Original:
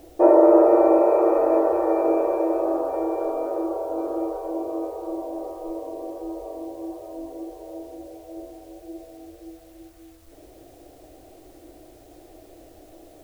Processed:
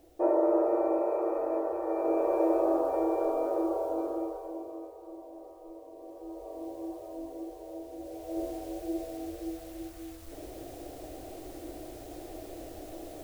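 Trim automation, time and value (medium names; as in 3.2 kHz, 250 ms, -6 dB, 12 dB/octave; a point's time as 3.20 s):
1.81 s -11.5 dB
2.43 s -3 dB
3.85 s -3 dB
4.94 s -15 dB
5.90 s -15 dB
6.68 s -5 dB
7.88 s -5 dB
8.44 s +4.5 dB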